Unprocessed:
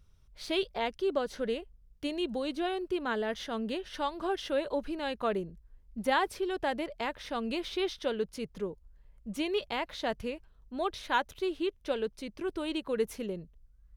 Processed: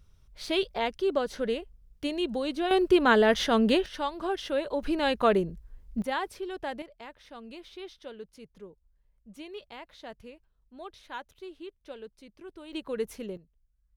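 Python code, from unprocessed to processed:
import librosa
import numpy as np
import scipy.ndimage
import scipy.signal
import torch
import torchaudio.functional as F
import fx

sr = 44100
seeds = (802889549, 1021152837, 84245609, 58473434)

y = fx.gain(x, sr, db=fx.steps((0.0, 3.0), (2.71, 11.5), (3.86, 1.5), (4.83, 8.0), (6.02, -3.5), (6.82, -11.0), (12.73, -1.5), (13.37, -12.0)))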